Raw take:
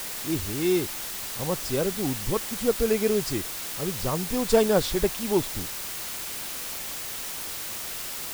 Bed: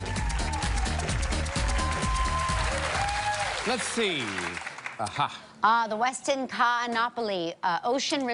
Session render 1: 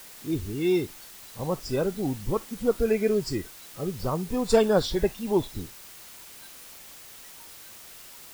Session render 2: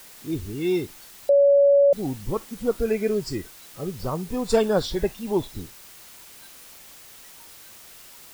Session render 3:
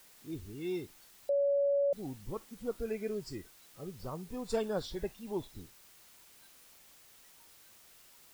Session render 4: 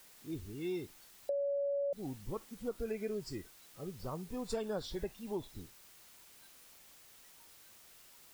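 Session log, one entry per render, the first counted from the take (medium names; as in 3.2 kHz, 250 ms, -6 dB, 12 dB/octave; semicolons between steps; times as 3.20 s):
noise print and reduce 12 dB
1.29–1.93 s: bleep 564 Hz -12.5 dBFS
trim -13 dB
compression, threshold -33 dBFS, peak gain reduction 6.5 dB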